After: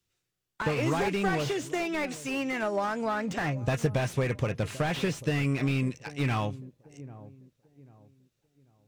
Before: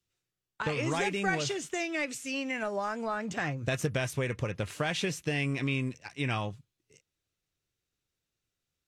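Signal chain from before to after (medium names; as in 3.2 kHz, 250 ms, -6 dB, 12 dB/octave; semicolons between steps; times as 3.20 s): feedback echo behind a low-pass 791 ms, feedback 32%, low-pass 640 Hz, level -16 dB; slew-rate limiter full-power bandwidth 35 Hz; trim +4 dB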